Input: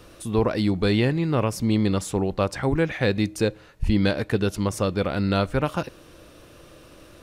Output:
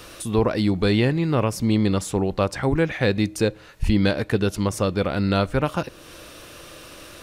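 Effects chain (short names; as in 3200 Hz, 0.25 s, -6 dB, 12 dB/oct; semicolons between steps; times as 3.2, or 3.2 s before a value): mismatched tape noise reduction encoder only; gain +1.5 dB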